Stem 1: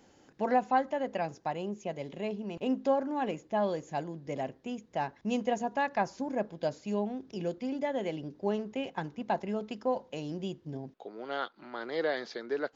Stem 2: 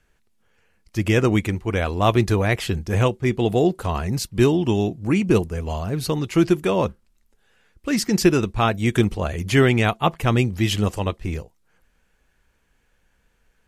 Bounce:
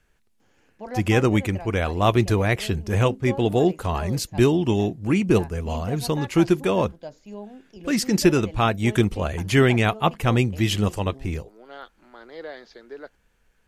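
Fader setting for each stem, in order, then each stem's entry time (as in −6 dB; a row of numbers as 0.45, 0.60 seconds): −6.0, −1.0 decibels; 0.40, 0.00 seconds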